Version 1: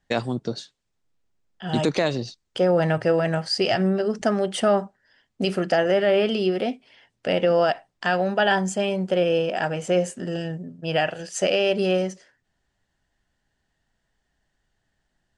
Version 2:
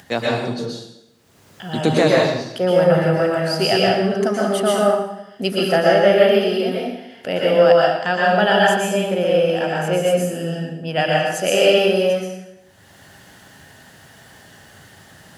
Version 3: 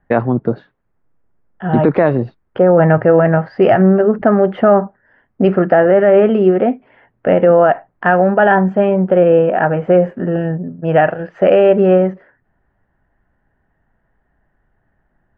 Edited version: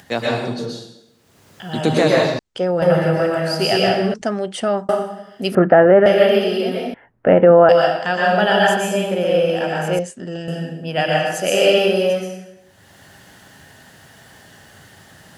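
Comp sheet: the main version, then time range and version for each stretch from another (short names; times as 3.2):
2
2.39–2.82 from 1
4.14–4.89 from 1
5.55–6.06 from 3
6.94–7.69 from 3
9.99–10.48 from 1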